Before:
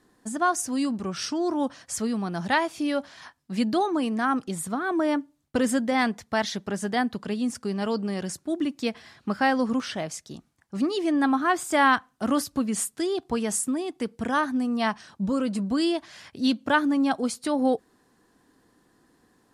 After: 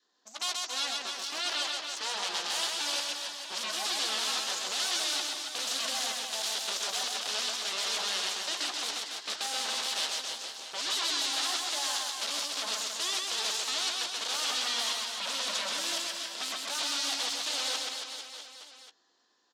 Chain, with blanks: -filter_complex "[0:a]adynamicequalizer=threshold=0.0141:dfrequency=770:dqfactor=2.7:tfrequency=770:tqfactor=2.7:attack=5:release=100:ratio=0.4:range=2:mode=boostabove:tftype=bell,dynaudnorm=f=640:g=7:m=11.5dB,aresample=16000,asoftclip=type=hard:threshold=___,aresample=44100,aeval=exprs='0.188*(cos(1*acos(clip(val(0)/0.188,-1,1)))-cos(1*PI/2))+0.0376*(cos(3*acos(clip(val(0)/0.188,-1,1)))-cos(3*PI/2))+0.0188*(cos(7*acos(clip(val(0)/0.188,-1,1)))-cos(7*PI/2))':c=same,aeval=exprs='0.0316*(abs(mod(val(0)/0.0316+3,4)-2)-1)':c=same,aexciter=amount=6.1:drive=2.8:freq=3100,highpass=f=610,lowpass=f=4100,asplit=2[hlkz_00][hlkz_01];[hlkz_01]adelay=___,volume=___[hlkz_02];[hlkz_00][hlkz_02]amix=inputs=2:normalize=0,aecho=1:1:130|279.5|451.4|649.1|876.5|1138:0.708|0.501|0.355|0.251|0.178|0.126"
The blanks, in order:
-18dB, 14, -11dB